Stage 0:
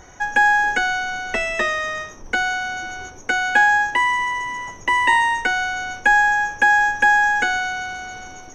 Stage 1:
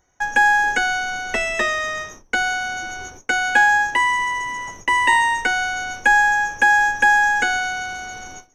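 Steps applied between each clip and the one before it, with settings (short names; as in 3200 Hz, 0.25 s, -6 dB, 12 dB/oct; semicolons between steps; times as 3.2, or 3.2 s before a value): gate with hold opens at -26 dBFS; high shelf 8300 Hz +10.5 dB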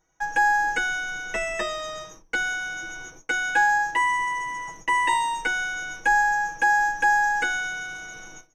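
comb 6.2 ms, depth 94%; gain -8.5 dB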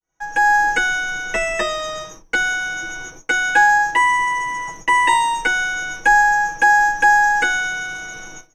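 opening faded in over 0.55 s; gain +7 dB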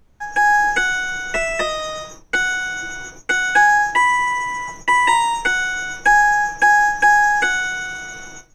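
added noise brown -53 dBFS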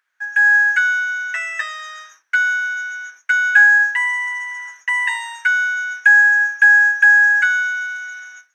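resonant high-pass 1600 Hz, resonance Q 5.4; gain -8.5 dB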